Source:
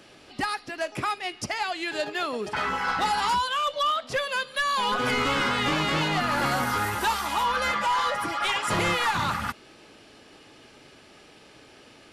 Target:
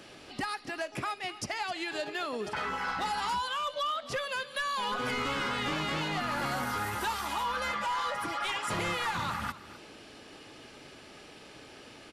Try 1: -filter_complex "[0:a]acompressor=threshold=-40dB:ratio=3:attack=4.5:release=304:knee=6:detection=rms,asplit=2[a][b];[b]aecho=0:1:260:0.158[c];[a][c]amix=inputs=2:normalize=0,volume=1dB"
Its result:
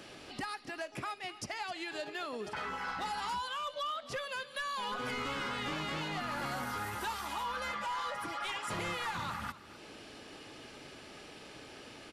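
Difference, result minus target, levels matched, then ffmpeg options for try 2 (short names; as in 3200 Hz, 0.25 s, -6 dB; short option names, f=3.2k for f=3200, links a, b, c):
compressor: peak gain reduction +5 dB
-filter_complex "[0:a]acompressor=threshold=-32.5dB:ratio=3:attack=4.5:release=304:knee=6:detection=rms,asplit=2[a][b];[b]aecho=0:1:260:0.158[c];[a][c]amix=inputs=2:normalize=0,volume=1dB"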